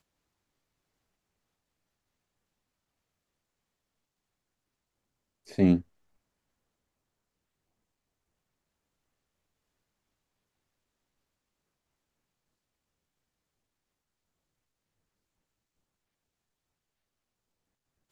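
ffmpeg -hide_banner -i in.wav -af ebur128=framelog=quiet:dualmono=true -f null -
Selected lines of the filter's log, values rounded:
Integrated loudness:
  I:         -22.6 LUFS
  Threshold: -34.6 LUFS
Loudness range:
  LRA:         1.8 LU
  Threshold: -50.9 LUFS
  LRA low:   -32.2 LUFS
  LRA high:  -30.3 LUFS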